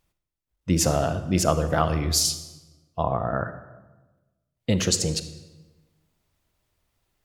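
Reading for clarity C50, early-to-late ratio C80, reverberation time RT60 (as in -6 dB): 11.5 dB, 13.5 dB, 1.2 s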